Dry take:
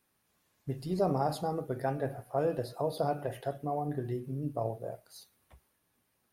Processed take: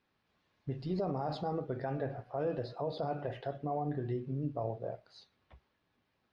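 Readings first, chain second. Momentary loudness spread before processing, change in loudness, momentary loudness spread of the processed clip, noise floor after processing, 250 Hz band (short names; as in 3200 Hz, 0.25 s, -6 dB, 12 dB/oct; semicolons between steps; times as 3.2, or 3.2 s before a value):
11 LU, -3.5 dB, 6 LU, -79 dBFS, -2.0 dB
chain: LPF 4500 Hz 24 dB/oct; limiter -25.5 dBFS, peak gain reduction 8.5 dB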